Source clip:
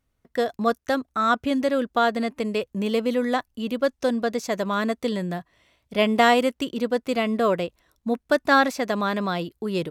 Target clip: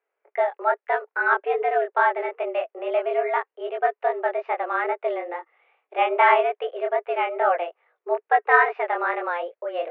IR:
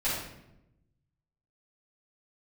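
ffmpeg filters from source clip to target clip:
-af "flanger=delay=18.5:depth=7:speed=2.4,highpass=f=260:t=q:w=0.5412,highpass=f=260:t=q:w=1.307,lowpass=f=2.4k:t=q:w=0.5176,lowpass=f=2.4k:t=q:w=0.7071,lowpass=f=2.4k:t=q:w=1.932,afreqshift=170,volume=4dB"

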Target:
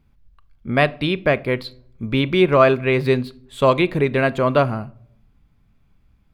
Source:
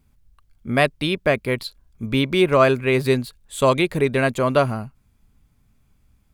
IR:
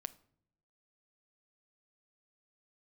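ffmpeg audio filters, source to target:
-filter_complex "[0:a]asplit=2[a][b];[b]lowpass=4.6k[c];[1:a]atrim=start_sample=2205,asetrate=48510,aresample=44100[d];[c][d]afir=irnorm=-1:irlink=0,volume=11.5dB[e];[a][e]amix=inputs=2:normalize=0,volume=-9dB"

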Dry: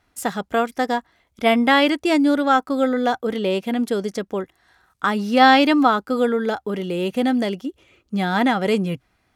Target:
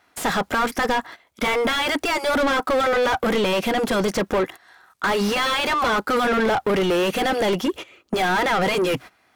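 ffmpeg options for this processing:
-filter_complex "[0:a]agate=range=-19dB:threshold=-41dB:ratio=16:detection=peak,afftfilt=real='re*lt(hypot(re,im),0.794)':imag='im*lt(hypot(re,im),0.794)':win_size=1024:overlap=0.75,aemphasis=mode=production:type=50kf,acompressor=threshold=-34dB:ratio=2,asplit=2[a][b];[b]highpass=f=720:p=1,volume=36dB,asoftclip=type=tanh:threshold=-10dB[c];[a][c]amix=inputs=2:normalize=0,lowpass=f=1.6k:p=1,volume=-6dB,volume=-1dB"

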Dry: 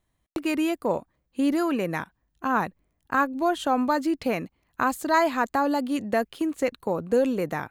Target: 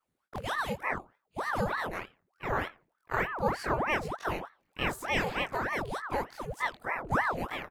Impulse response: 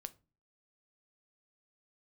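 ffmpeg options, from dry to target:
-filter_complex "[0:a]afftfilt=real='re':imag='-im':win_size=2048:overlap=0.75,asplit=2[a][b];[b]adelay=87,lowpass=f=3.3k:p=1,volume=-23dB,asplit=2[c][d];[d]adelay=87,lowpass=f=3.3k:p=1,volume=0.26[e];[a][c][e]amix=inputs=3:normalize=0,aeval=exprs='val(0)*sin(2*PI*830*n/s+830*0.85/3.3*sin(2*PI*3.3*n/s))':c=same"

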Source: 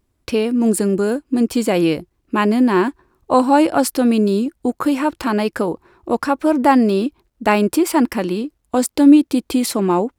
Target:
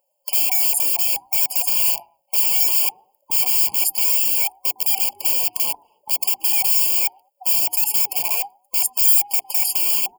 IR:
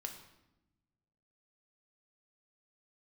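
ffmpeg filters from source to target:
-filter_complex "[0:a]afftfilt=real='real(if(lt(b,1008),b+24*(1-2*mod(floor(b/24),2)),b),0)':imag='imag(if(lt(b,1008),b+24*(1-2*mod(floor(b/24),2)),b),0)':win_size=2048:overlap=0.75,asplit=2[a][b];[b]adelay=107,lowpass=f=1.4k:p=1,volume=-22dB,asplit=2[c][d];[d]adelay=107,lowpass=f=1.4k:p=1,volume=0.3[e];[a][c][e]amix=inputs=3:normalize=0,acrossover=split=5700[f][g];[f]aeval=exprs='(mod(7.08*val(0)+1,2)-1)/7.08':c=same[h];[h][g]amix=inputs=2:normalize=0,aemphasis=mode=production:type=riaa,bandreject=f=60:t=h:w=6,bandreject=f=120:t=h:w=6,bandreject=f=180:t=h:w=6,bandreject=f=240:t=h:w=6,bandreject=f=300:t=h:w=6,bandreject=f=360:t=h:w=6,bandreject=f=420:t=h:w=6,afftfilt=real='re*eq(mod(floor(b*sr/1024/1100),2),0)':imag='im*eq(mod(floor(b*sr/1024/1100),2),0)':win_size=1024:overlap=0.75,volume=-8.5dB"

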